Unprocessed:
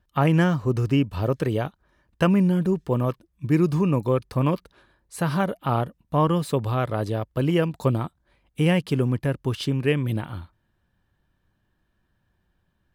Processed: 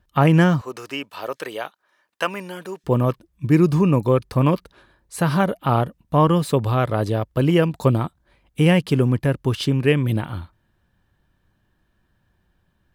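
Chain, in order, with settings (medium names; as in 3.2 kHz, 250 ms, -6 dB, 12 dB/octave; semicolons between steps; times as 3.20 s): 0.61–2.84 s: Bessel high-pass 860 Hz, order 2; trim +4.5 dB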